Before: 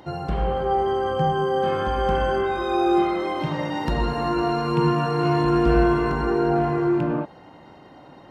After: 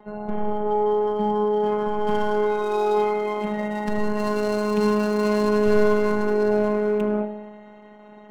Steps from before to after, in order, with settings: local Wiener filter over 9 samples; robot voice 210 Hz; gate with hold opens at -37 dBFS; treble shelf 2.7 kHz -5.5 dB, from 2.07 s +4.5 dB, from 4.17 s +11 dB; spring tank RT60 1 s, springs 57 ms, chirp 75 ms, DRR 9.5 dB

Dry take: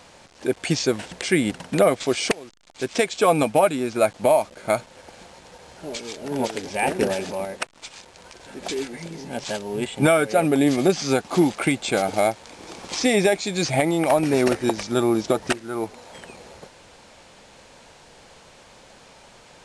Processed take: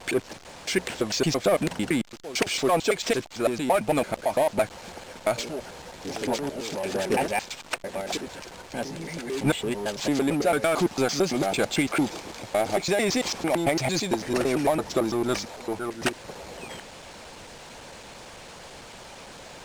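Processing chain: slices played last to first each 112 ms, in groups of 6; power-law waveshaper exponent 0.7; harmonic-percussive split harmonic -4 dB; trim -5 dB

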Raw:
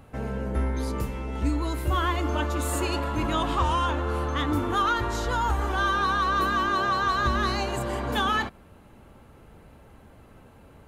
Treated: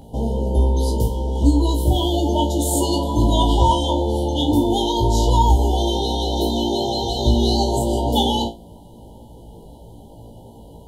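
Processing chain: FFT band-reject 1–2.9 kHz; flutter echo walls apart 3 m, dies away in 0.23 s; trim +8 dB

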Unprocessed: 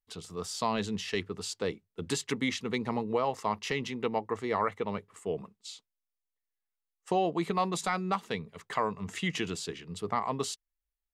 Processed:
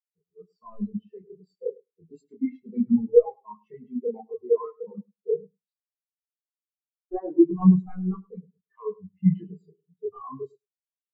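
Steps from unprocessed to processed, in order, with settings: sine folder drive 8 dB, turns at -16.5 dBFS; chorus voices 4, 0.28 Hz, delay 29 ms, depth 3.9 ms; on a send: feedback delay 103 ms, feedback 37%, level -6 dB; on the sum: spectral contrast expander 4:1; trim +7 dB

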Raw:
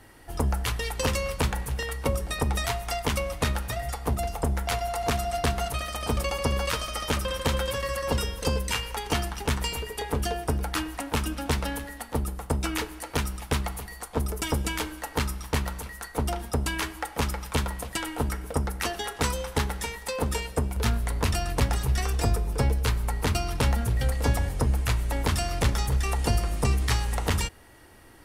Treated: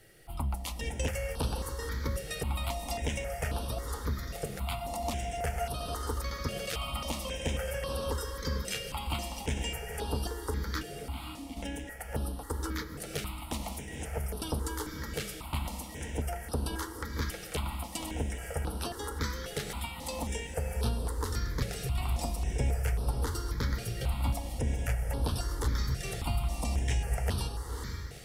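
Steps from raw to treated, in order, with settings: in parallel at -1 dB: compression, threshold -31 dBFS, peak gain reduction 13 dB; on the sum: bit crusher 11-bit; 10.83–11.57 s: vowel filter i; on a send: echo that smears into a reverb 509 ms, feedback 47%, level -5 dB; on the sum: stepped phaser 3.7 Hz 260–7000 Hz; trim -8.5 dB

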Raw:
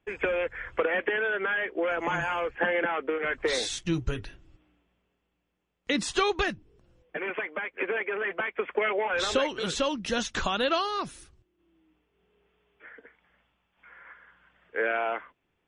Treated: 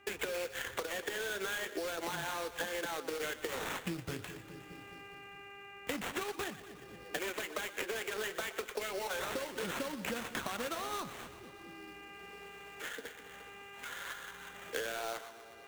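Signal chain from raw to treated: high-pass 68 Hz; peaking EQ 7.7 kHz +6 dB 0.27 oct; compression 10:1, threshold -35 dBFS, peak gain reduction 15 dB; on a send: two-band feedback delay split 500 Hz, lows 209 ms, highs 120 ms, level -13 dB; on the sum: sample-rate reducer 5 kHz, jitter 20%; mains buzz 400 Hz, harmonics 7, -66 dBFS -1 dB/octave; in parallel at -12 dB: bit crusher 6-bit; on the sum: flange 0.41 Hz, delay 3 ms, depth 8.4 ms, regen -73%; three bands compressed up and down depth 70%; trim +2.5 dB

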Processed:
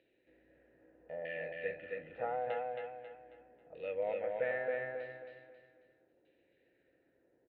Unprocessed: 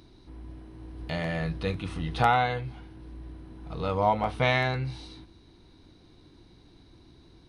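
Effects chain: LFO low-pass saw down 0.8 Hz 880–2900 Hz; vowel filter e; feedback delay 271 ms, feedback 38%, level -3 dB; trim -2.5 dB

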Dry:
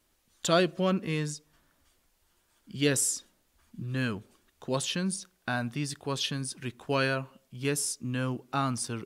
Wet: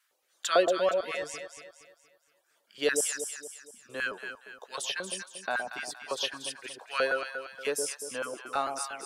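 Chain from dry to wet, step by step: LFO high-pass square 4.5 Hz 530–1500 Hz; reverb removal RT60 1.5 s; echo whose repeats swap between lows and highs 117 ms, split 870 Hz, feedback 64%, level -4 dB; trim -2 dB

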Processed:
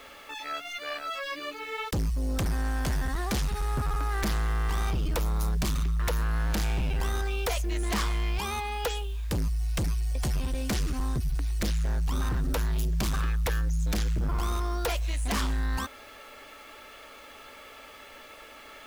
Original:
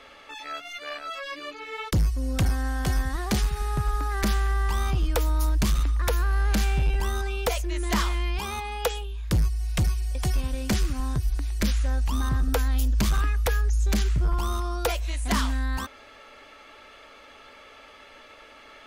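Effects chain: sine folder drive 4 dB, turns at -17 dBFS; word length cut 8-bit, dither none; trim -7 dB

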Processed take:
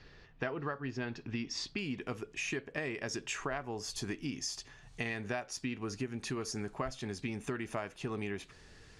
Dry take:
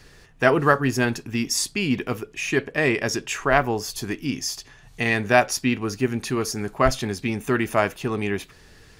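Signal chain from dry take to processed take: low-pass 4.8 kHz 24 dB/octave, from 1.79 s 9.3 kHz; compression 12:1, threshold -27 dBFS, peak gain reduction 16.5 dB; trim -6.5 dB

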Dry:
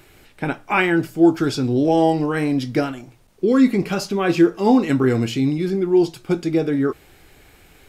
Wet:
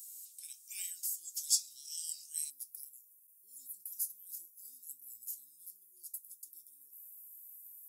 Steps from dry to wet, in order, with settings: inverse Chebyshev high-pass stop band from 1.3 kHz, stop band 80 dB, from 2.49 s stop band from 2.4 kHz; trim +11.5 dB

